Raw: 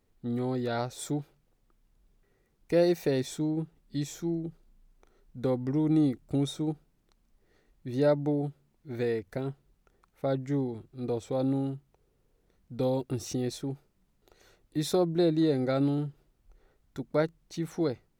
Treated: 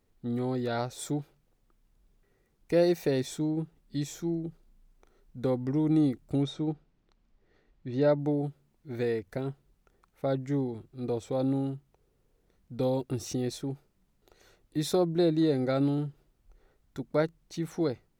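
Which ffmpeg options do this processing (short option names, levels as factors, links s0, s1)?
-filter_complex "[0:a]asettb=1/sr,asplit=3[s0][s1][s2];[s0]atrim=end=6.424[s3];[s1]atrim=start=6.42:end=8.19,asetpts=PTS-STARTPTS,afade=t=in:d=0.004:c=qsin,afade=t=out:st=1.766:d=0.004:c=qsin,lowpass=4500[s4];[s2]atrim=start=8.186[s5];[s3][s4]acrossfade=d=0.004:c1=hsin:c2=qsin[s6];[s6][s5]acrossfade=d=0.004:c1=qsin:c2=hsin"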